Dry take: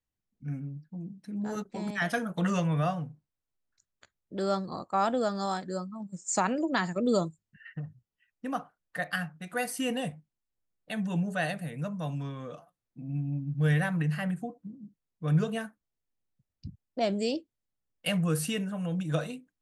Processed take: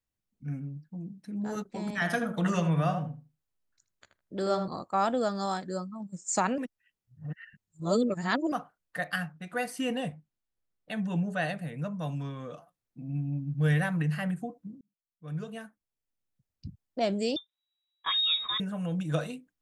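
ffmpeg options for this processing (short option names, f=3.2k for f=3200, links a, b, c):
-filter_complex "[0:a]asettb=1/sr,asplit=3[a][b][c];[a]atrim=end=1.854[d];[b]atrim=start=1.85:end=4.68,asetpts=PTS-STARTPTS,afade=t=in:d=0.004:c=qsin,afade=t=out:st=2.826:d=0.004:c=qsin,asplit=2[e][f];[f]adelay=79,lowpass=f=2k:p=1,volume=-6.5dB,asplit=2[g][h];[h]adelay=79,lowpass=f=2k:p=1,volume=0.18,asplit=2[i][j];[j]adelay=79,lowpass=f=2k:p=1,volume=0.18[k];[e][g][i][k]amix=inputs=4:normalize=0,atrim=end_sample=124803[l];[c]atrim=start=4.676[m];[d][l]acrossfade=d=0.004:c1=hsin:c2=qsin[n];[n][m]acrossfade=d=0.004:c1=qsin:c2=hsin,asettb=1/sr,asplit=3[o][p][q];[o]atrim=end=9.324[r];[p]atrim=start=9.32:end=12.01,asetpts=PTS-STARTPTS,afade=t=in:d=0.004:c=qsin,afade=t=out:st=2.686:d=0.004:c=qsin,highshelf=f=7k:g=-9.5[s];[q]atrim=start=12.006[t];[r][s]acrossfade=d=0.004:c1=hsin:c2=qsin[u];[u][t]acrossfade=d=0.004:c1=qsin:c2=hsin,asettb=1/sr,asplit=3[v][w][x];[v]atrim=end=17.364[y];[w]atrim=start=17.36:end=18.6,asetpts=PTS-STARTPTS,afade=t=in:d=0.004:c=qsin,afade=t=out:st=1.236:d=0.004:c=qsin,lowpass=f=3.3k:t=q:w=0.5098,lowpass=f=3.3k:t=q:w=0.6013,lowpass=f=3.3k:t=q:w=0.9,lowpass=f=3.3k:t=q:w=2.563,afreqshift=-3900[z];[x]atrim=start=18.596[aa];[y][z]acrossfade=d=0.004:c1=hsin:c2=qsin[ab];[ab][aa]acrossfade=d=0.004:c1=qsin:c2=hsin,asplit=4[ac][ad][ae][af];[ac]atrim=end=6.582[ag];[ad]atrim=start=6.578:end=8.522,asetpts=PTS-STARTPTS,areverse[ah];[ae]atrim=start=8.518:end=14.81,asetpts=PTS-STARTPTS,afade=t=out:st=6.288:d=0.004:c=hsin[ai];[af]atrim=start=14.81,asetpts=PTS-STARTPTS,afade=t=in:d=1.85[aj];[ag][ah]acrossfade=d=0.004:c1=hsin:c2=hsin[ak];[ai][aj]concat=n=2:v=0:a=1[al];[ak][al]acrossfade=d=0.004:c1=hsin:c2=hsin"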